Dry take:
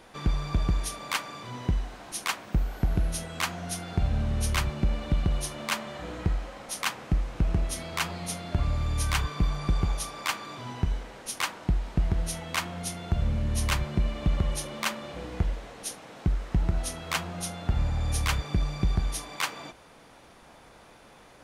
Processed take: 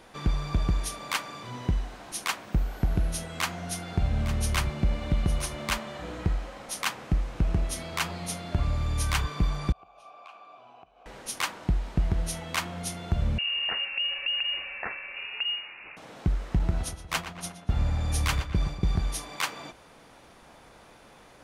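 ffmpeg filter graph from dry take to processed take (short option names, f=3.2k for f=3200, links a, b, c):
-filter_complex "[0:a]asettb=1/sr,asplit=3[a][b][c];[a]atrim=end=3.314[d];[b]atrim=start=3.31:end=5.78,asetpts=PTS-STARTPTS,afade=t=in:d=0.004:c=qsin,afade=t=out:st=2.466:d=0.004:c=qsin,aeval=exprs='val(0)+0.00224*sin(2*PI*2100*n/s)':c=same,aecho=1:1:858:0.251,atrim=end_sample=108927[e];[c]atrim=start=5.776[f];[d][e]acrossfade=d=0.004:c1=hsin:c2=qsin[g];[g][f]acrossfade=d=0.004:c1=qsin:c2=hsin,asettb=1/sr,asplit=3[h][i][j];[h]atrim=end=9.724[k];[i]atrim=start=9.72:end=11.06,asetpts=PTS-STARTPTS,afade=t=in:d=0.004:c=qsin,afade=t=out:st=1.336:d=0.004:c=qsin,acompressor=threshold=-30dB:ratio=10:attack=3.2:release=140:knee=1:detection=peak,asplit=3[l][m][n];[l]bandpass=f=730:t=q:w=8,volume=0dB[o];[m]bandpass=f=1.09k:t=q:w=8,volume=-6dB[p];[n]bandpass=f=2.44k:t=q:w=8,volume=-9dB[q];[o][p][q]amix=inputs=3:normalize=0[r];[j]atrim=start=11.056[s];[k][r]acrossfade=d=0.004:c1=hsin:c2=qsin[t];[t][s]acrossfade=d=0.004:c1=qsin:c2=hsin,asettb=1/sr,asplit=3[u][v][w];[u]atrim=end=13.384[x];[v]atrim=start=13.38:end=15.97,asetpts=PTS-STARTPTS,afade=t=in:d=0.004:c=qsin,afade=t=out:st=2.586:d=0.004:c=qsin,acompressor=threshold=-26dB:ratio=4:attack=3.2:release=140:knee=1:detection=peak,lowpass=f=2.5k:t=q:w=0.5098,lowpass=f=2.5k:t=q:w=0.6013,lowpass=f=2.5k:t=q:w=0.9,lowpass=f=2.5k:t=q:w=2.563,afreqshift=-2900[y];[w]atrim=start=15.966[z];[x][y]acrossfade=d=0.004:c1=hsin:c2=qsin[aa];[aa][z]acrossfade=d=0.004:c1=qsin:c2=hsin,asettb=1/sr,asplit=3[ab][ac][ad];[ab]atrim=end=16.594[ae];[ac]atrim=start=16.59:end=19.01,asetpts=PTS-STARTPTS,afade=t=in:d=0.004:c=qsin,afade=t=out:st=2.416:d=0.004:c=qsin,agate=range=-33dB:threshold=-30dB:ratio=3:release=100:detection=peak,asplit=2[af][ag];[ag]adelay=119,lowpass=f=3.6k:p=1,volume=-10dB,asplit=2[ah][ai];[ai]adelay=119,lowpass=f=3.6k:p=1,volume=0.54,asplit=2[aj][ak];[ak]adelay=119,lowpass=f=3.6k:p=1,volume=0.54,asplit=2[al][am];[am]adelay=119,lowpass=f=3.6k:p=1,volume=0.54,asplit=2[an][ao];[ao]adelay=119,lowpass=f=3.6k:p=1,volume=0.54,asplit=2[ap][aq];[aq]adelay=119,lowpass=f=3.6k:p=1,volume=0.54[ar];[af][ah][aj][al][an][ap][ar]amix=inputs=7:normalize=0,atrim=end_sample=106722[as];[ad]atrim=start=19.006[at];[ae][as]acrossfade=d=0.004:c1=hsin:c2=qsin[au];[au][at]acrossfade=d=0.004:c1=qsin:c2=hsin"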